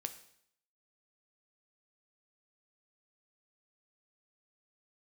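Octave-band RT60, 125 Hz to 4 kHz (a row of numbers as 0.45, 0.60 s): 0.70, 0.70, 0.70, 0.65, 0.65, 0.65 s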